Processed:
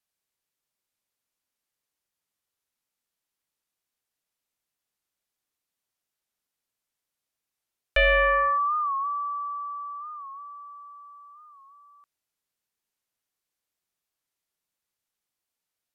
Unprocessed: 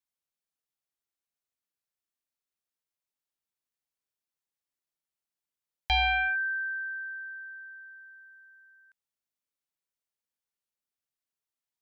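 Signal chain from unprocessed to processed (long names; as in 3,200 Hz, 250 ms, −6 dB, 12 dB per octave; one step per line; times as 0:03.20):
wrong playback speed 45 rpm record played at 33 rpm
wow of a warped record 45 rpm, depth 100 cents
level +5 dB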